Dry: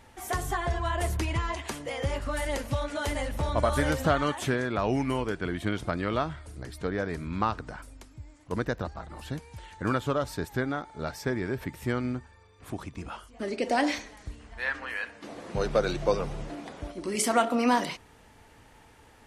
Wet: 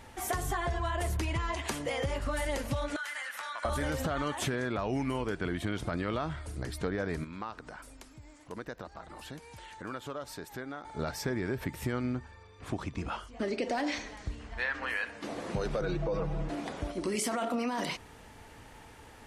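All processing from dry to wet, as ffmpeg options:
-filter_complex "[0:a]asettb=1/sr,asplit=3[a][b][c];[a]atrim=end=2.964[d];[b]atrim=start=2.96:end=3.65,asetpts=PTS-STARTPTS,afade=t=in:d=0.004:c=qsin,afade=t=out:st=0.686:d=0.004:c=qsin,highpass=f=1.5k:t=q:w=3.5,acompressor=threshold=-39dB:ratio=5:attack=3.2:release=140:knee=1:detection=peak[e];[c]atrim=start=3.646[f];[d][e]acrossfade=d=0.004:c1=hsin:c2=qsin[g];[g][f]acrossfade=d=0.004:c1=qsin:c2=hsin,asettb=1/sr,asplit=3[h][i][j];[h]atrim=end=7.244[k];[i]atrim=start=7.24:end=10.85,asetpts=PTS-STARTPTS,afade=t=in:d=0.004:c=qsin,afade=t=out:st=3.606:d=0.004:c=qsin,equalizer=f=71:w=0.49:g=-10.5,acompressor=threshold=-50dB:ratio=2:attack=3.2:release=140:knee=1:detection=peak[l];[j]atrim=start=10.846[m];[k][l]acrossfade=d=0.004:c1=hsin:c2=qsin[n];[n][m]acrossfade=d=0.004:c1=qsin:c2=hsin,asettb=1/sr,asplit=3[o][p][q];[o]atrim=end=12.034[r];[p]atrim=start=12.03:end=14.83,asetpts=PTS-STARTPTS,afade=t=in:d=0.004:c=qsin,afade=t=out:st=2.796:d=0.004:c=qsin,lowpass=7.2k,asoftclip=type=hard:threshold=-18dB[s];[q]atrim=start=14.826[t];[r][s]acrossfade=d=0.004:c1=hsin:c2=qsin[u];[u][t]acrossfade=d=0.004:c1=qsin:c2=hsin,asettb=1/sr,asplit=3[v][w][x];[v]atrim=end=15.814[y];[w]atrim=start=15.81:end=16.49,asetpts=PTS-STARTPTS,afade=t=in:d=0.004:c=qsin,afade=t=out:st=0.676:d=0.004:c=qsin,lowpass=f=1.6k:p=1,aecho=1:1:6.2:0.85,atrim=end_sample=29988[z];[x]atrim=start=16.486[aa];[y][z]acrossfade=d=0.004:c1=hsin:c2=qsin[ab];[ab][aa]acrossfade=d=0.004:c1=qsin:c2=hsin,alimiter=limit=-21dB:level=0:latency=1:release=12,acompressor=threshold=-33dB:ratio=4,volume=3.5dB"

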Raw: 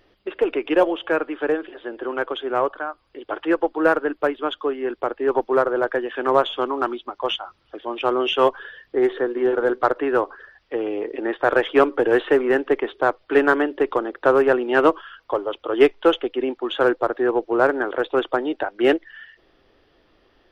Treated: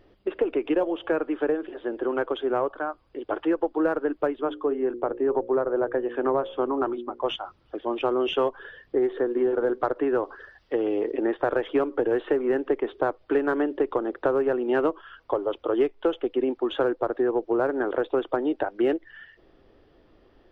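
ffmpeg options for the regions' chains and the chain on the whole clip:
-filter_complex "[0:a]asettb=1/sr,asplit=3[a][b][c];[a]atrim=end=4.414[d];[b]atrim=start=4.41:end=7.26,asetpts=PTS-STARTPTS,afade=t=in:d=0.004:c=qsin,afade=t=out:st=2.846:d=0.004:c=qsin,lowpass=f=1.5k:p=1,bandreject=f=60:t=h:w=6,bandreject=f=120:t=h:w=6,bandreject=f=180:t=h:w=6,bandreject=f=240:t=h:w=6,bandreject=f=300:t=h:w=6,bandreject=f=360:t=h:w=6,bandreject=f=420:t=h:w=6,bandreject=f=480:t=h:w=6,bandreject=f=540:t=h:w=6[e];[c]atrim=start=7.256[f];[d][e]acrossfade=d=0.004:c1=hsin:c2=qsin[g];[g][f]acrossfade=d=0.004:c1=qsin:c2=hsin,asettb=1/sr,asplit=3[h][i][j];[h]atrim=end=10.234[k];[i]atrim=start=10.23:end=11.11,asetpts=PTS-STARTPTS,afade=t=in:d=0.004:c=qsin,afade=t=out:st=0.876:d=0.004:c=qsin,highshelf=f=2.6k:g=8.5,bandreject=f=2.4k:w=16[l];[j]atrim=start=11.106[m];[k][l]acrossfade=d=0.004:c1=hsin:c2=qsin[n];[n][m]acrossfade=d=0.004:c1=qsin:c2=hsin,tiltshelf=f=970:g=5.5,acompressor=threshold=-19dB:ratio=5,volume=-1.5dB"

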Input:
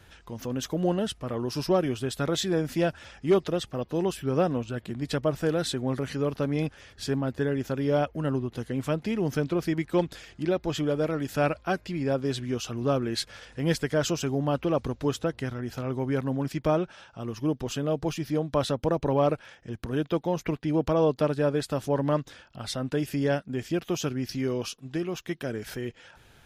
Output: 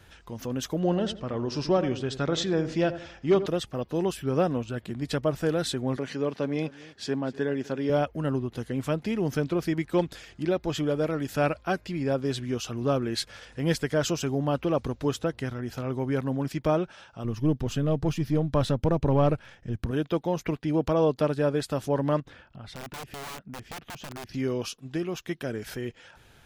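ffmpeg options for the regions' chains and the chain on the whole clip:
-filter_complex "[0:a]asettb=1/sr,asplit=3[a][b][c];[a]atrim=end=0.794[d];[b]atrim=start=0.79:end=3.46,asetpts=PTS-STARTPTS,afade=t=in:d=0.004:c=qsin,afade=t=out:st=2.666:d=0.004:c=qsin,lowpass=f=6.7k:w=0.5412,lowpass=f=6.7k:w=1.3066,asplit=2[e][f];[f]adelay=85,lowpass=f=1.1k:p=1,volume=-11dB,asplit=2[g][h];[h]adelay=85,lowpass=f=1.1k:p=1,volume=0.38,asplit=2[i][j];[j]adelay=85,lowpass=f=1.1k:p=1,volume=0.38,asplit=2[k][l];[l]adelay=85,lowpass=f=1.1k:p=1,volume=0.38[m];[e][g][i][k][m]amix=inputs=5:normalize=0,atrim=end_sample=117747[n];[c]atrim=start=3.456[o];[d][n]acrossfade=d=0.004:c1=hsin:c2=qsin[p];[p][o]acrossfade=d=0.004:c1=qsin:c2=hsin,asettb=1/sr,asplit=3[q][r][s];[q]atrim=end=5.964[t];[r]atrim=start=5.96:end=7.9,asetpts=PTS-STARTPTS,afade=t=in:d=0.004:c=qsin,afade=t=out:st=1.936:d=0.004:c=qsin,highpass=180,lowpass=7.2k,bandreject=f=1.3k:w=13,aecho=1:1:250:0.1,atrim=end_sample=85554[u];[s]atrim=start=7.896[v];[t][u]acrossfade=d=0.004:c1=hsin:c2=qsin[w];[w][v]acrossfade=d=0.004:c1=qsin:c2=hsin,asettb=1/sr,asplit=3[x][y][z];[x]atrim=end=17.244[aa];[y]atrim=start=17.24:end=19.91,asetpts=PTS-STARTPTS,afade=t=in:d=0.004:c=qsin,afade=t=out:st=2.666:d=0.004:c=qsin,aeval=exprs='if(lt(val(0),0),0.708*val(0),val(0))':c=same,bass=f=250:g=9,treble=f=4k:g=-2[ab];[z]atrim=start=19.906[ac];[aa][ab]acrossfade=d=0.004:c1=hsin:c2=qsin[ad];[ad][ac]acrossfade=d=0.004:c1=qsin:c2=hsin,asettb=1/sr,asplit=3[ae][af][ag];[ae]atrim=end=22.204[ah];[af]atrim=start=22.2:end=24.34,asetpts=PTS-STARTPTS,afade=t=in:d=0.004:c=qsin,afade=t=out:st=2.136:d=0.004:c=qsin,bass=f=250:g=4,treble=f=4k:g=-15,aeval=exprs='(mod(13.3*val(0)+1,2)-1)/13.3':c=same,acompressor=threshold=-42dB:ratio=2.5:attack=3.2:release=140:knee=1:detection=peak[ai];[ag]atrim=start=24.336[aj];[ah][ai]acrossfade=d=0.004:c1=hsin:c2=qsin[ak];[ak][aj]acrossfade=d=0.004:c1=qsin:c2=hsin"

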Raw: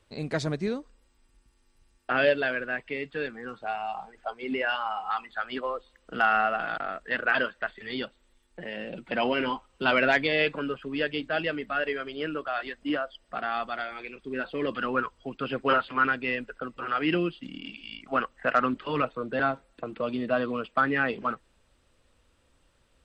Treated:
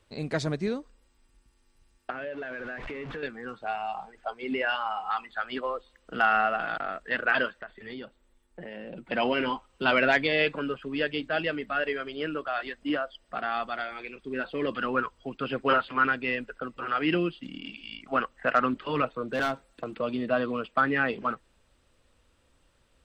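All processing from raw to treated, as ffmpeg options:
-filter_complex "[0:a]asettb=1/sr,asplit=3[a][b][c];[a]atrim=end=2.104[d];[b]atrim=start=2.1:end=3.23,asetpts=PTS-STARTPTS,afade=t=in:d=0.004:c=qsin,afade=t=out:st=1.126:d=0.004:c=qsin,aeval=exprs='val(0)+0.5*0.0299*sgn(val(0))':c=same,lowpass=2.1k,acompressor=threshold=-34dB:ratio=6:attack=3.2:release=140:knee=1:detection=peak[e];[c]atrim=start=3.226[f];[d][e]acrossfade=d=0.004:c1=hsin:c2=qsin[g];[g][f]acrossfade=d=0.004:c1=qsin:c2=hsin,asettb=1/sr,asplit=3[h][i][j];[h]atrim=end=7.614[k];[i]atrim=start=7.61:end=9.1,asetpts=PTS-STARTPTS,afade=t=in:d=0.004:c=qsin,afade=t=out:st=1.486:d=0.004:c=qsin,equalizer=f=4.1k:w=0.45:g=-7.5,acompressor=threshold=-35dB:ratio=6:attack=3.2:release=140:knee=1:detection=peak[l];[j]atrim=start=9.096[m];[k][l]acrossfade=d=0.004:c1=hsin:c2=qsin[n];[n][m]acrossfade=d=0.004:c1=qsin:c2=hsin,asettb=1/sr,asplit=3[o][p][q];[o]atrim=end=19.284[r];[p]atrim=start=19.28:end=19.99,asetpts=PTS-STARTPTS,afade=t=in:d=0.004:c=qsin,afade=t=out:st=0.706:d=0.004:c=qsin,highshelf=f=4.1k:g=6,asoftclip=type=hard:threshold=-23dB[s];[q]atrim=start=19.986[t];[r][s]acrossfade=d=0.004:c1=hsin:c2=qsin[u];[u][t]acrossfade=d=0.004:c1=qsin:c2=hsin"

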